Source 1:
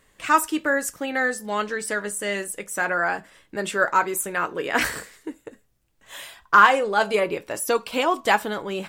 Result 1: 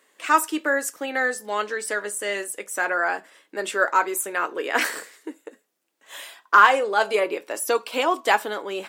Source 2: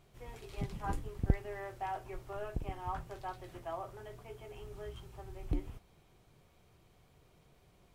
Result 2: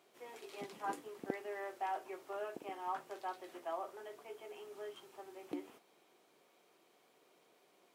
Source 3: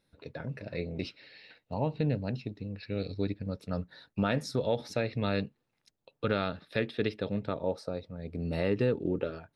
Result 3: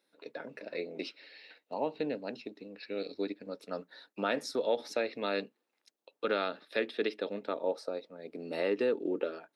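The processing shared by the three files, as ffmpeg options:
-af "highpass=f=280:w=0.5412,highpass=f=280:w=1.3066"

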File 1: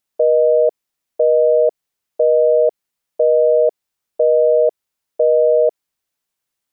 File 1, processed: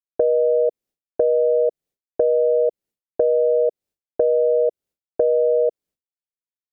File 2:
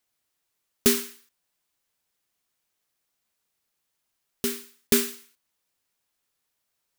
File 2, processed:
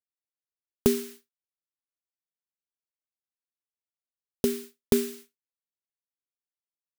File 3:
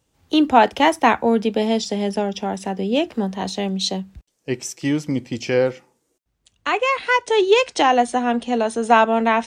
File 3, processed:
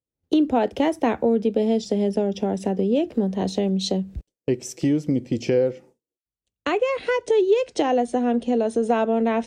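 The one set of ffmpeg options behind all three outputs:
-af "agate=range=0.0224:threshold=0.00891:ratio=3:detection=peak,lowshelf=f=700:t=q:w=1.5:g=9,acompressor=threshold=0.0708:ratio=2.5"

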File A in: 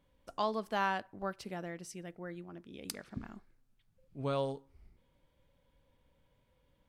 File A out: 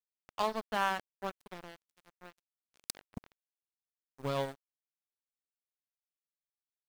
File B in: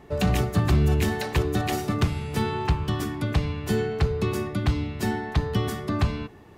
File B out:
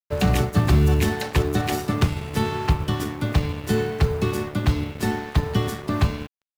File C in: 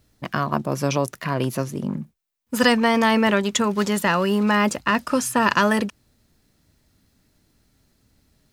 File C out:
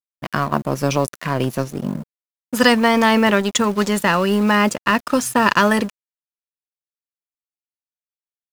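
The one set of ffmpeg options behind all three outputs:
-af "acrusher=bits=8:mode=log:mix=0:aa=0.000001,aeval=exprs='sgn(val(0))*max(abs(val(0))-0.0133,0)':c=same,volume=1.58"

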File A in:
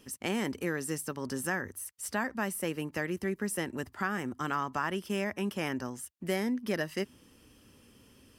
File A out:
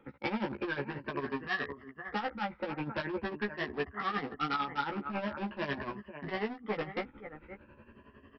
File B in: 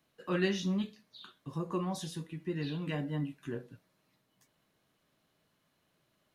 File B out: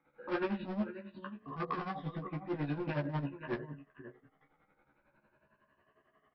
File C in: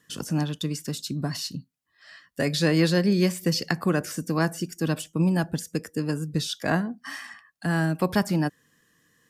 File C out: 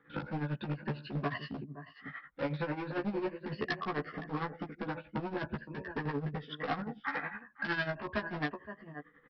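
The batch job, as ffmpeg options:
-filter_complex "[0:a]afftfilt=real='re*pow(10,14/40*sin(2*PI*(1.4*log(max(b,1)*sr/1024/100)/log(2)-(0.43)*(pts-256)/sr)))':imag='im*pow(10,14/40*sin(2*PI*(1.4*log(max(b,1)*sr/1024/100)/log(2)-(0.43)*(pts-256)/sr)))':win_size=1024:overlap=0.75,acrossover=split=110|1100[s0][s1][s2];[s0]dynaudnorm=f=120:g=21:m=1.58[s3];[s3][s1][s2]amix=inputs=3:normalize=0,lowpass=f=1900:w=0.5412,lowpass=f=1900:w=1.3066,asubboost=boost=2.5:cutoff=56,acompressor=threshold=0.0316:ratio=20,aecho=1:1:515:0.211,aresample=11025,volume=50.1,asoftclip=hard,volume=0.02,aresample=44100,tremolo=f=11:d=0.74,lowshelf=f=340:g=-9,bandreject=f=680:w=17,asplit=2[s4][s5];[s5]adelay=14,volume=0.708[s6];[s4][s6]amix=inputs=2:normalize=0,volume=2.51"

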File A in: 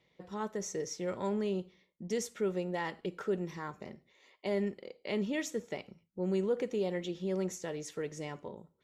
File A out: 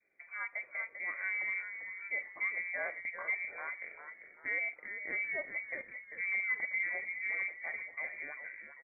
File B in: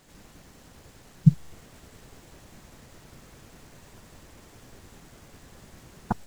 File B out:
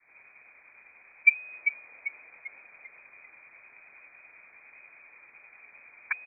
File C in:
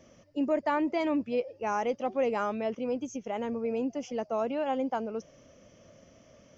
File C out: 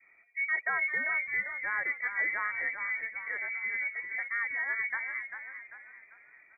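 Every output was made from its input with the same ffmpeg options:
-filter_complex "[0:a]lowpass=f=2100:t=q:w=0.5098,lowpass=f=2100:t=q:w=0.6013,lowpass=f=2100:t=q:w=0.9,lowpass=f=2100:t=q:w=2.563,afreqshift=-2500,asplit=6[s0][s1][s2][s3][s4][s5];[s1]adelay=394,afreqshift=-60,volume=0.376[s6];[s2]adelay=788,afreqshift=-120,volume=0.158[s7];[s3]adelay=1182,afreqshift=-180,volume=0.0661[s8];[s4]adelay=1576,afreqshift=-240,volume=0.0279[s9];[s5]adelay=1970,afreqshift=-300,volume=0.0117[s10];[s0][s6][s7][s8][s9][s10]amix=inputs=6:normalize=0,adynamicequalizer=threshold=0.00355:dfrequency=570:dqfactor=0.8:tfrequency=570:tqfactor=0.8:attack=5:release=100:ratio=0.375:range=2.5:mode=boostabove:tftype=bell,volume=0.631"

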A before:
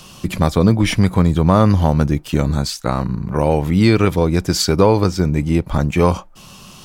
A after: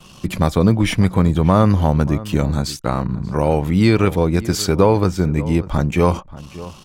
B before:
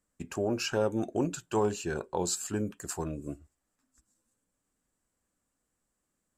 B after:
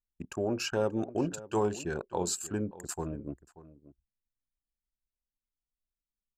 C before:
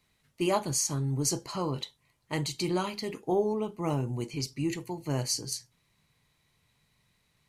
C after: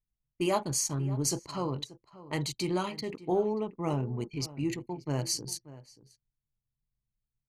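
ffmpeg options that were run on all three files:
-filter_complex "[0:a]anlmdn=0.398,adynamicequalizer=threshold=0.00631:dfrequency=5000:dqfactor=2.1:tfrequency=5000:tqfactor=2.1:attack=5:release=100:ratio=0.375:range=3.5:mode=cutabove:tftype=bell,asplit=2[s0][s1];[s1]adelay=583.1,volume=0.141,highshelf=f=4000:g=-13.1[s2];[s0][s2]amix=inputs=2:normalize=0,volume=0.891"

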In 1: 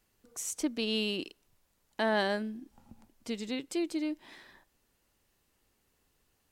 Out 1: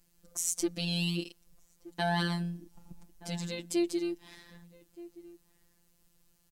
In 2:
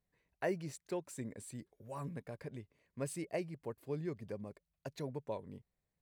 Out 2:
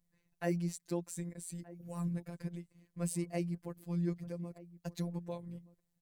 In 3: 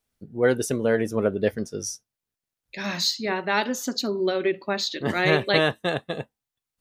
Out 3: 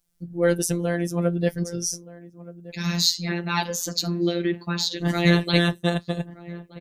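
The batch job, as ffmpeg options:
-filter_complex "[0:a]bass=f=250:g=11,treble=f=4000:g=8,asplit=2[s0][s1];[s1]adelay=1224,volume=0.126,highshelf=f=4000:g=-27.6[s2];[s0][s2]amix=inputs=2:normalize=0,afftfilt=real='hypot(re,im)*cos(PI*b)':imag='0':win_size=1024:overlap=0.75,volume=1.12"

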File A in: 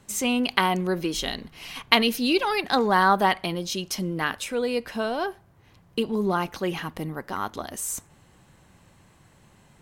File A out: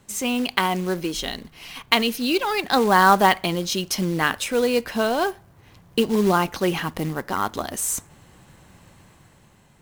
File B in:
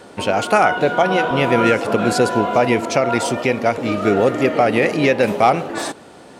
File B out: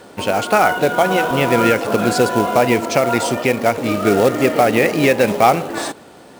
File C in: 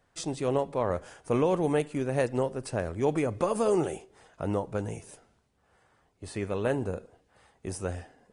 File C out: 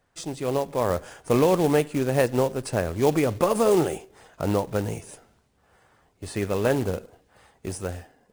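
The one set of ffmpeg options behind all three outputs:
-af "dynaudnorm=f=110:g=13:m=1.88,acrusher=bits=4:mode=log:mix=0:aa=0.000001"

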